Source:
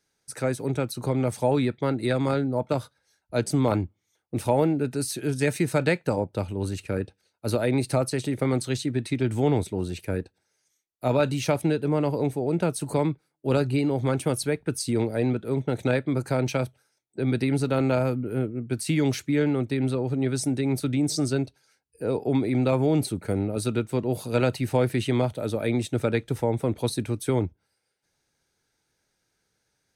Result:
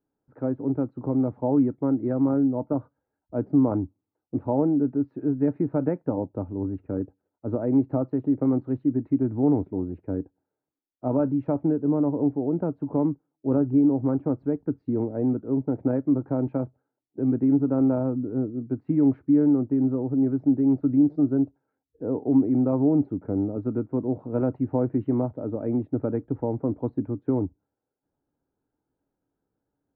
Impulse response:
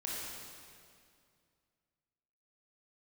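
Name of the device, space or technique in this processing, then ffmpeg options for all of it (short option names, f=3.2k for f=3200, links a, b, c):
under water: -af "lowpass=f=1.1k:w=0.5412,lowpass=f=1.1k:w=1.3066,equalizer=f=280:t=o:w=0.38:g=11.5,volume=-4dB"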